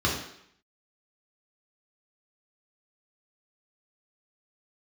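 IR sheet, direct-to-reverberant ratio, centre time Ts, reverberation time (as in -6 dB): -3.5 dB, 39 ms, 0.70 s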